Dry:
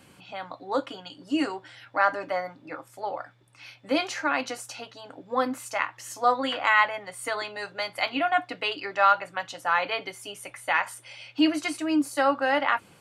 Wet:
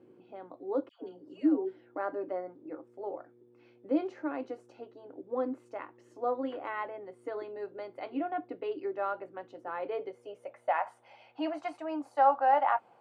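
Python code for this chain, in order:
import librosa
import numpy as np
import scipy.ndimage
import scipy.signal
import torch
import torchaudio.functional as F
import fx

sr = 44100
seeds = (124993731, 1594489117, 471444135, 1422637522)

y = fx.dmg_buzz(x, sr, base_hz=120.0, harmonics=4, level_db=-59.0, tilt_db=-4, odd_only=False)
y = fx.filter_sweep_bandpass(y, sr, from_hz=370.0, to_hz=770.0, start_s=9.75, end_s=10.99, q=3.9)
y = fx.dispersion(y, sr, late='lows', ms=128.0, hz=890.0, at=(0.89, 1.96))
y = y * librosa.db_to_amplitude(5.0)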